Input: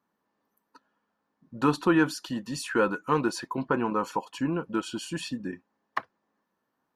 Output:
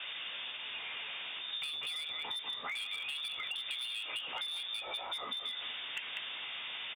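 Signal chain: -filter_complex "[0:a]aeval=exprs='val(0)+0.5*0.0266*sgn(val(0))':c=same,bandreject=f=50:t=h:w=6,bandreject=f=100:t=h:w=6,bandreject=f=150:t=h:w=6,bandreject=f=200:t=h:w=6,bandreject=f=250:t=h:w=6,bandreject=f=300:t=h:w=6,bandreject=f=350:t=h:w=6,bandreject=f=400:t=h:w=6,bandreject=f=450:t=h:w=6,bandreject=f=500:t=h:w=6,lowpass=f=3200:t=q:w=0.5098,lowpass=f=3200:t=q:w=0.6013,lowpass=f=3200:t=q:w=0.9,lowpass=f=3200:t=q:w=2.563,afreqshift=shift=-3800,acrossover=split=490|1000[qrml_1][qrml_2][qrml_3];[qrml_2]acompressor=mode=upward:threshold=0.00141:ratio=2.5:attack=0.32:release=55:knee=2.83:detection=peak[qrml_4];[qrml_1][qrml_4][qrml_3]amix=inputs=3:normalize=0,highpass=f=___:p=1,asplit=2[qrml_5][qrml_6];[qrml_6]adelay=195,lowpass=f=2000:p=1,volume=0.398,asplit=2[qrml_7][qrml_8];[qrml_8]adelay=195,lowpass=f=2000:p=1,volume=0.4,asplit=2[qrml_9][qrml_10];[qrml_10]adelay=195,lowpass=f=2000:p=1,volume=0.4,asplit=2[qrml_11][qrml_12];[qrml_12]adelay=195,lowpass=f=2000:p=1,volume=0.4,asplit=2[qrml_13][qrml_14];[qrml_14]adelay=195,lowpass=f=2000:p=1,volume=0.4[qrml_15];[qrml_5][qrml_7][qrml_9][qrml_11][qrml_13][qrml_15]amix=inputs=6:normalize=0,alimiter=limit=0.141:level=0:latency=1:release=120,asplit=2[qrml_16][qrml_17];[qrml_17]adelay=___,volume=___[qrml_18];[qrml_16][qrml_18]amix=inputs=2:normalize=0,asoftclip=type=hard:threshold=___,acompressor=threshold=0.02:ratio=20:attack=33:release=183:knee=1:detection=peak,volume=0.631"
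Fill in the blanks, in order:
77, 16, 0.376, 0.0596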